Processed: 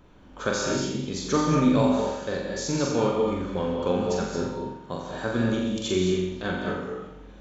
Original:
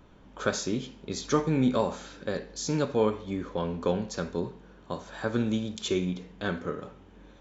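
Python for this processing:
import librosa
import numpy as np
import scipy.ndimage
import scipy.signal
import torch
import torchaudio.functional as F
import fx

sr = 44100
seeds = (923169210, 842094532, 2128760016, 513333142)

p1 = x + fx.room_flutter(x, sr, wall_m=7.4, rt60_s=0.65, dry=0)
y = fx.rev_gated(p1, sr, seeds[0], gate_ms=250, shape='rising', drr_db=2.5)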